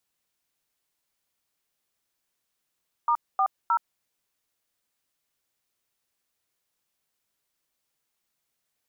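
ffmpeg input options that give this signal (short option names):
-f lavfi -i "aevalsrc='0.0794*clip(min(mod(t,0.31),0.072-mod(t,0.31))/0.002,0,1)*(eq(floor(t/0.31),0)*(sin(2*PI*941*mod(t,0.31))+sin(2*PI*1209*mod(t,0.31)))+eq(floor(t/0.31),1)*(sin(2*PI*770*mod(t,0.31))+sin(2*PI*1209*mod(t,0.31)))+eq(floor(t/0.31),2)*(sin(2*PI*941*mod(t,0.31))+sin(2*PI*1336*mod(t,0.31))))':d=0.93:s=44100"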